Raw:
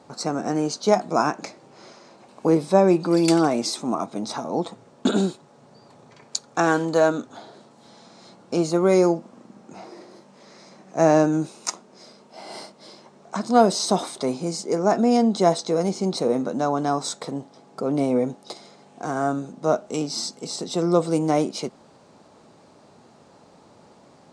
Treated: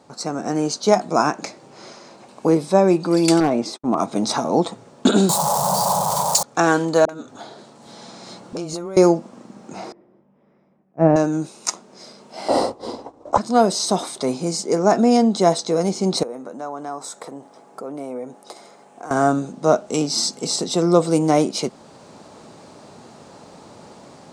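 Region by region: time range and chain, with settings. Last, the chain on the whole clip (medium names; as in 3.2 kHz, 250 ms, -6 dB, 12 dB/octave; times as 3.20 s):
3.40–3.98 s: gate -31 dBFS, range -58 dB + low-pass 1.5 kHz 6 dB/octave + overload inside the chain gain 13.5 dB
5.29–6.43 s: jump at every zero crossing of -31.5 dBFS + FFT filter 110 Hz 0 dB, 190 Hz +6 dB, 270 Hz -30 dB, 550 Hz -2 dB, 970 Hz +5 dB, 1.7 kHz -25 dB, 2.5 kHz -22 dB, 3.8 kHz -7 dB, 8.1 kHz +7 dB + overdrive pedal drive 22 dB, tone 2.9 kHz, clips at -3 dBFS
7.05–8.97 s: compression 12:1, threshold -32 dBFS + phase dispersion highs, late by 44 ms, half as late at 380 Hz
9.92–11.16 s: Savitzky-Golay filter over 25 samples + tilt EQ -3.5 dB/octave + upward expansion 2.5:1, over -25 dBFS
12.48–13.38 s: high-order bell 650 Hz +14.5 dB 2.3 oct + expander -33 dBFS + frequency shift -98 Hz
16.23–19.11 s: compression 2:1, threshold -37 dBFS + high-pass 680 Hz 6 dB/octave + peaking EQ 4.3 kHz -12.5 dB 1.9 oct
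whole clip: treble shelf 6.1 kHz +4.5 dB; level rider gain up to 9.5 dB; trim -1 dB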